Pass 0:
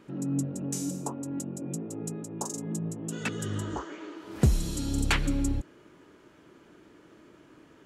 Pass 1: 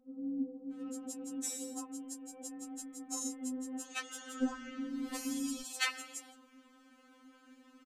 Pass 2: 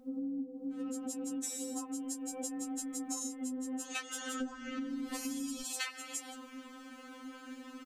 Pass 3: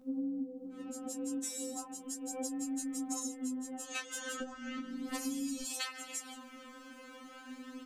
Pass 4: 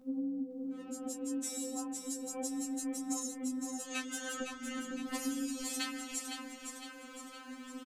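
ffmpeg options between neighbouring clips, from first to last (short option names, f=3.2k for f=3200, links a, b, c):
-filter_complex "[0:a]lowshelf=f=150:g=-5.5,acrossover=split=580[a][b];[b]adelay=720[c];[a][c]amix=inputs=2:normalize=0,afftfilt=real='re*3.46*eq(mod(b,12),0)':imag='im*3.46*eq(mod(b,12),0)':win_size=2048:overlap=0.75"
-af "acompressor=threshold=-48dB:ratio=10,volume=12dB"
-af "flanger=delay=15:depth=2.4:speed=0.36,volume=3dB"
-af "aecho=1:1:510|1020|1530|2040|2550|3060:0.447|0.228|0.116|0.0593|0.0302|0.0154"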